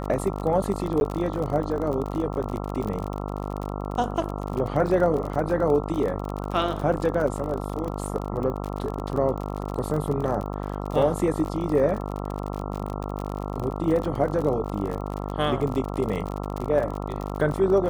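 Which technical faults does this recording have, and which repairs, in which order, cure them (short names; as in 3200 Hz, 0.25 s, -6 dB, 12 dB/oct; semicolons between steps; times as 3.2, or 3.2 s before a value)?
buzz 50 Hz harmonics 27 -31 dBFS
crackle 43/s -29 dBFS
1–1.01 gap 11 ms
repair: de-click; de-hum 50 Hz, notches 27; interpolate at 1, 11 ms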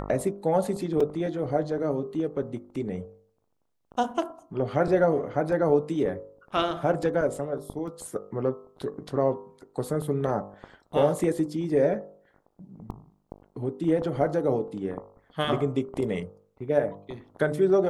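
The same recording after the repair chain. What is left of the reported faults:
none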